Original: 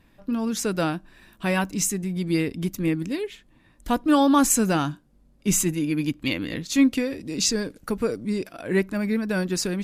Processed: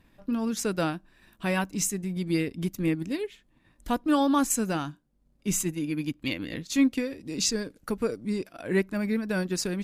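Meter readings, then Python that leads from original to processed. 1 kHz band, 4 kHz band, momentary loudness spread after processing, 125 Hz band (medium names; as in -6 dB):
-5.0 dB, -4.0 dB, 9 LU, -4.0 dB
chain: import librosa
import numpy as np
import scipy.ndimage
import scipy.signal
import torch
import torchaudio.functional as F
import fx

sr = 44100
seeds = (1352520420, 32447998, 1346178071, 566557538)

y = fx.transient(x, sr, attack_db=0, sustain_db=-5)
y = fx.rider(y, sr, range_db=3, speed_s=2.0)
y = y * 10.0 ** (-4.5 / 20.0)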